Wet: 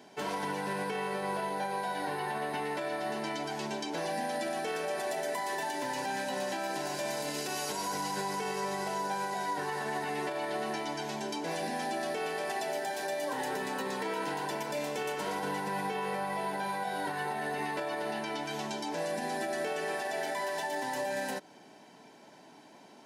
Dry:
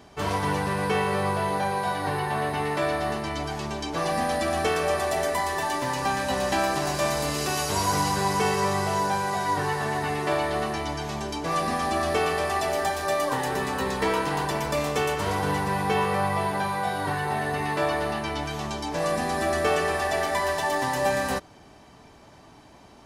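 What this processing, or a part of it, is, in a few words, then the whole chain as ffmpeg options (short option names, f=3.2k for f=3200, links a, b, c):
PA system with an anti-feedback notch: -af "highpass=f=180:w=0.5412,highpass=f=180:w=1.3066,asuperstop=centerf=1200:order=8:qfactor=6.9,alimiter=limit=-22.5dB:level=0:latency=1:release=126,volume=-3dB"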